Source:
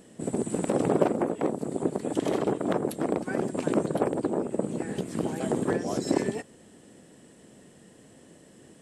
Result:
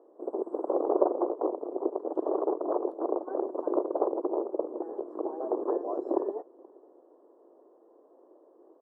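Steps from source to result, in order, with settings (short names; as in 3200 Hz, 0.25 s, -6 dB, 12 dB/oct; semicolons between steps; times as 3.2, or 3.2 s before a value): elliptic band-pass 340–1100 Hz, stop band 40 dB; outdoor echo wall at 82 m, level -26 dB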